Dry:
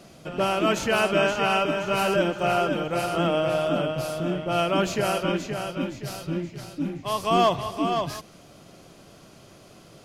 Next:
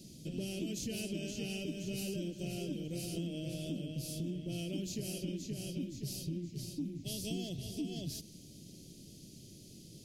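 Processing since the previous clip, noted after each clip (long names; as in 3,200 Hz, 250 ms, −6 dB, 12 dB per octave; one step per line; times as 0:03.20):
Chebyshev band-stop filter 270–4,500 Hz, order 2
high-shelf EQ 9,700 Hz +4 dB
downward compressor, threshold −35 dBFS, peak gain reduction 11.5 dB
level −1 dB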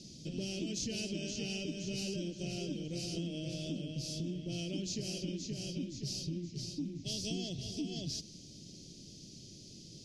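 low-pass with resonance 5,600 Hz, resonance Q 2.2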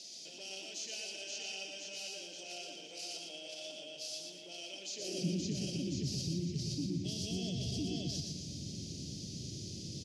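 brickwall limiter −37 dBFS, peak gain reduction 11 dB
high-pass filter sweep 880 Hz → 77 Hz, 0:04.92–0:05.42
repeating echo 119 ms, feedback 40%, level −4 dB
level +5 dB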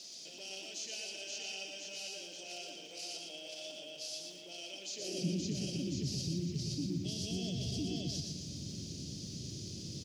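surface crackle 570 per second −57 dBFS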